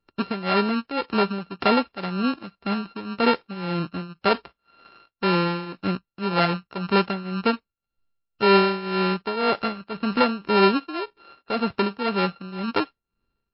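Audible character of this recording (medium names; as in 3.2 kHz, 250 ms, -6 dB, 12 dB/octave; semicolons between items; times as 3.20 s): a buzz of ramps at a fixed pitch in blocks of 32 samples; tremolo triangle 1.9 Hz, depth 80%; MP3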